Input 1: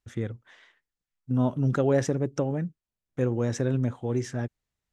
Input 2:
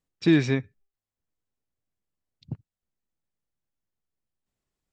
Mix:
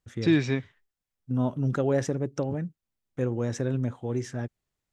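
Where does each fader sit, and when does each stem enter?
−2.0, −2.5 decibels; 0.00, 0.00 seconds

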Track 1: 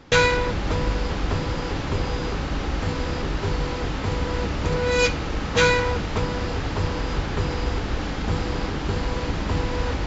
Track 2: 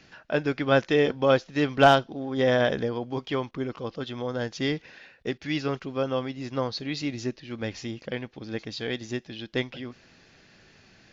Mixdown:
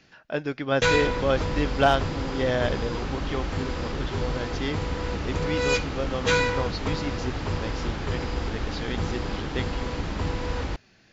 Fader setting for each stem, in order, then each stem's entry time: −4.0, −3.0 decibels; 0.70, 0.00 seconds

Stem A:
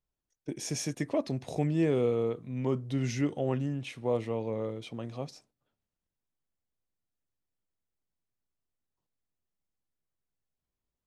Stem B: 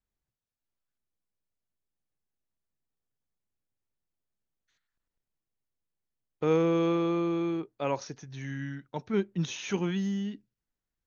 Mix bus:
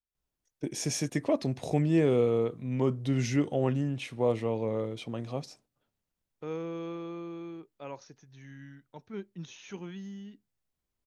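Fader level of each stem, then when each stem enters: +2.5, −11.5 decibels; 0.15, 0.00 seconds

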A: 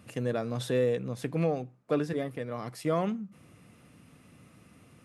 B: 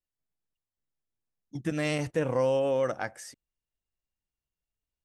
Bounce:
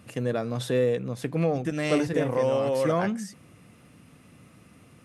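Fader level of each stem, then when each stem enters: +3.0, +1.0 decibels; 0.00, 0.00 seconds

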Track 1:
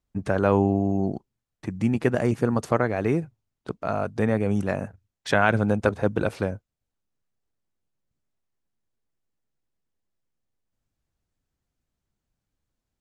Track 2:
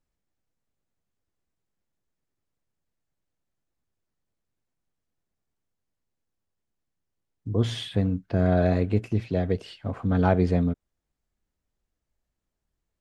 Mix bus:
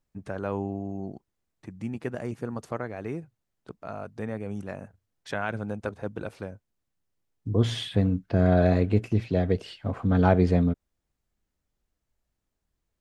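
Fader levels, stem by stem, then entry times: −10.5, +1.0 decibels; 0.00, 0.00 seconds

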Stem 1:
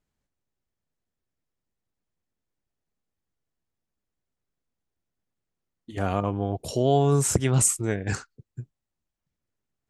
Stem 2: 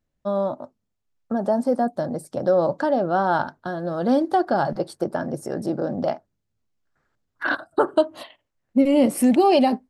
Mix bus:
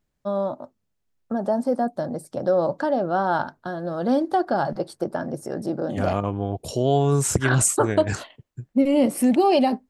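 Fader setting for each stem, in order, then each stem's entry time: +1.0, −1.5 decibels; 0.00, 0.00 seconds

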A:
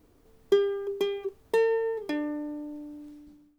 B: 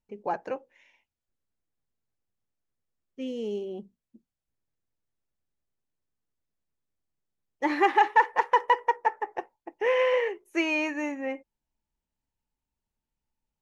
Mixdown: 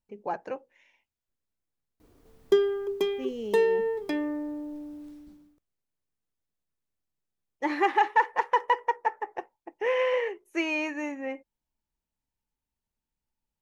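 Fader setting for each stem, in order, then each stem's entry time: +1.0, −2.0 decibels; 2.00, 0.00 seconds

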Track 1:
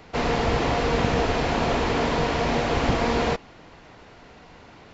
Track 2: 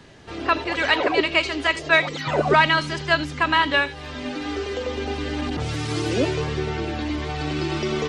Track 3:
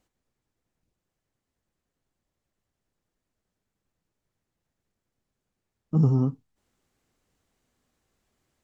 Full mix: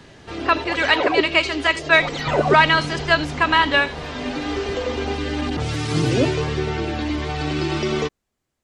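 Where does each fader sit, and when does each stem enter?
−11.5, +2.5, −3.0 decibels; 1.80, 0.00, 0.00 seconds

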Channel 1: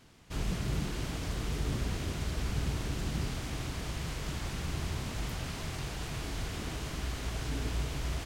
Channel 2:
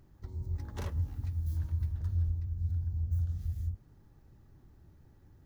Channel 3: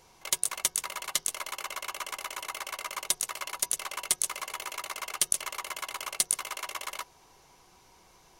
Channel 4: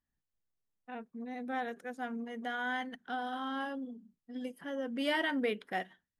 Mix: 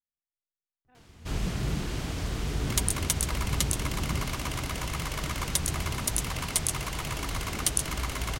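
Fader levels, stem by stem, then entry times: +3.0, −13.5, −0.5, −19.5 decibels; 0.95, 0.85, 2.45, 0.00 seconds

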